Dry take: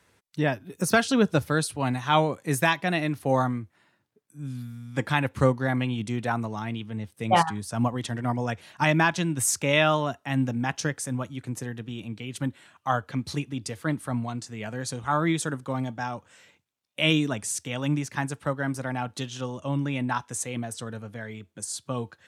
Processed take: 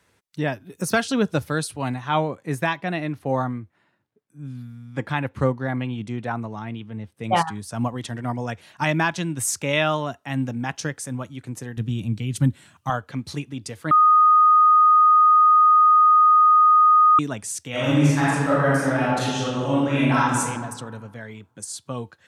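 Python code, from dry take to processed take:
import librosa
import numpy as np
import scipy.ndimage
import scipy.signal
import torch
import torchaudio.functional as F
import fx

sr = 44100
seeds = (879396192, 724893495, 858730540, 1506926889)

y = fx.high_shelf(x, sr, hz=4200.0, db=-11.0, at=(1.94, 7.24))
y = fx.bass_treble(y, sr, bass_db=14, treble_db=7, at=(11.77, 12.9))
y = fx.reverb_throw(y, sr, start_s=17.7, length_s=2.68, rt60_s=1.5, drr_db=-9.5)
y = fx.edit(y, sr, fx.bleep(start_s=13.91, length_s=3.28, hz=1240.0, db=-11.0), tone=tone)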